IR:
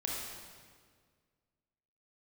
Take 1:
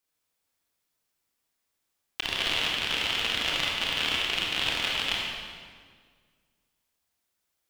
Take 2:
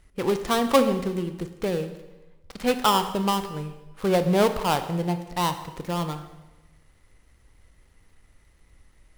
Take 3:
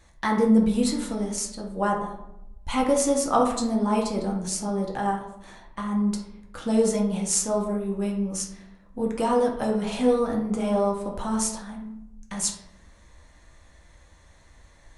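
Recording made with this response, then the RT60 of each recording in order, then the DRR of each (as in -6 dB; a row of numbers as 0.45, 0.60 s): 1; 1.8, 1.1, 0.85 s; -3.5, 8.5, -1.0 dB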